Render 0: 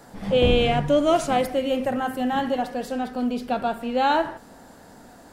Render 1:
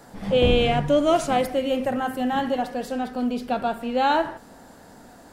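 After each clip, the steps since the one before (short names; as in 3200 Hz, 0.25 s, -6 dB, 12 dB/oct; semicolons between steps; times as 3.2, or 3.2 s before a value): nothing audible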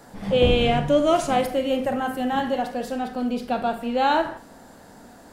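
Schroeder reverb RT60 0.33 s, combs from 30 ms, DRR 10.5 dB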